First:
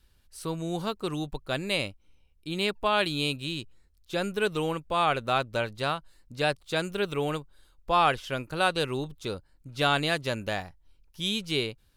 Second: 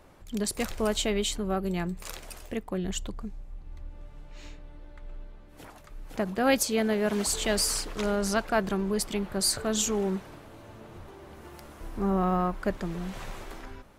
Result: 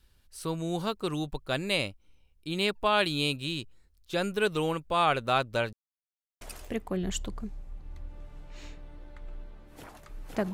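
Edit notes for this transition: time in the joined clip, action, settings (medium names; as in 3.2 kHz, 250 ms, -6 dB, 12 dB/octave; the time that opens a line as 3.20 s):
first
5.73–6.41 s: mute
6.41 s: go over to second from 2.22 s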